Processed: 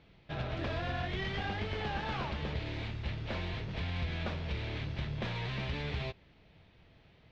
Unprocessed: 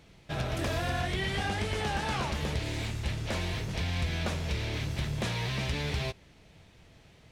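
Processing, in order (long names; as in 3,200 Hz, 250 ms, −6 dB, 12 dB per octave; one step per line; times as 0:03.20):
stylus tracing distortion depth 0.11 ms
low-pass filter 4,200 Hz 24 dB per octave
level −4.5 dB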